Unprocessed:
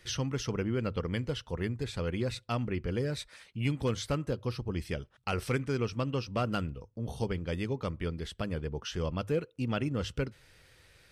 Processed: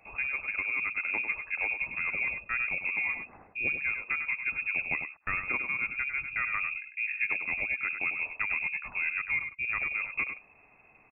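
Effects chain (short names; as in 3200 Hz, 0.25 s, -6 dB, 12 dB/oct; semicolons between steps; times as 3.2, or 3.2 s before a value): vocal rider within 4 dB 0.5 s; echo 99 ms -8 dB; inverted band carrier 2600 Hz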